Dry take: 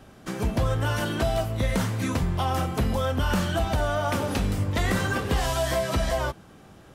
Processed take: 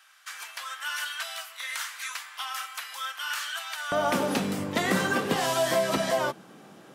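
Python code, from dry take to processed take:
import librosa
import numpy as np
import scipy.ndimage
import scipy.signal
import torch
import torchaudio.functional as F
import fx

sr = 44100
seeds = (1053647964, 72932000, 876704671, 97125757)

y = fx.highpass(x, sr, hz=fx.steps((0.0, 1300.0), (3.92, 170.0)), slope=24)
y = y * 10.0 ** (1.5 / 20.0)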